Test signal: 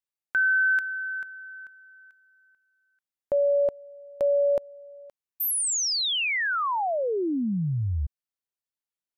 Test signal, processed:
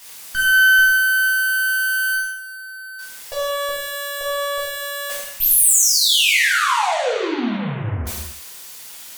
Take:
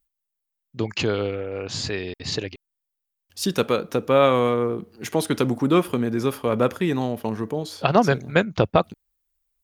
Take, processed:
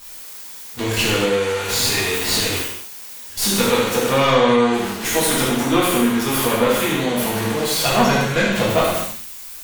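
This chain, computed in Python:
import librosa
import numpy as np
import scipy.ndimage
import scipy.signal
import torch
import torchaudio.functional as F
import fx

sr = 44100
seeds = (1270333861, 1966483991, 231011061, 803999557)

y = x + 0.5 * 10.0 ** (-19.5 / 20.0) * np.sign(x)
y = fx.gate_hold(y, sr, open_db=-23.0, close_db=-25.0, hold_ms=11.0, range_db=-14, attack_ms=0.75, release_ms=75.0)
y = fx.tilt_shelf(y, sr, db=-5.0, hz=1100.0)
y = fx.cheby_harmonics(y, sr, harmonics=(3, 6), levels_db=(-17, -19), full_scale_db=-0.5)
y = fx.dynamic_eq(y, sr, hz=5100.0, q=3.6, threshold_db=-42.0, ratio=4.0, max_db=-5)
y = fx.spec_gate(y, sr, threshold_db=-30, keep='strong')
y = 10.0 ** (-8.0 / 20.0) * np.tanh(y / 10.0 ** (-8.0 / 20.0))
y = y + 10.0 ** (-9.5 / 20.0) * np.pad(y, (int(75 * sr / 1000.0), 0))[:len(y)]
y = fx.rev_gated(y, sr, seeds[0], gate_ms=290, shape='falling', drr_db=-7.5)
y = y * librosa.db_to_amplitude(-2.5)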